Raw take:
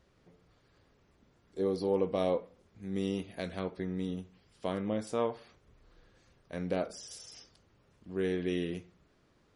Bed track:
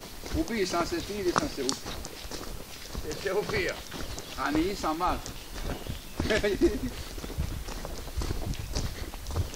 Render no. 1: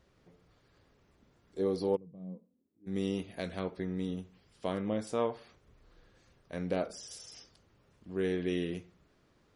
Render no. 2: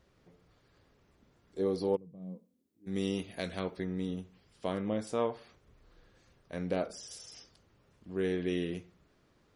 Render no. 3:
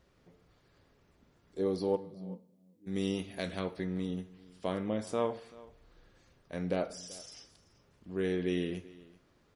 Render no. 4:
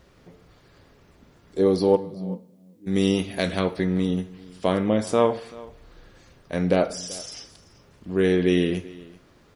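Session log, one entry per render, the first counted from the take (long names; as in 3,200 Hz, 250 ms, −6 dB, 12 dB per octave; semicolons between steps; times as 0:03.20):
0:01.95–0:02.86: resonant band-pass 130 Hz → 330 Hz, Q 8.1
0:02.22–0:03.84: high-shelf EQ 2,100 Hz +5 dB
single-tap delay 385 ms −21 dB; coupled-rooms reverb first 0.6 s, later 1.7 s, from −25 dB, DRR 13.5 dB
level +12 dB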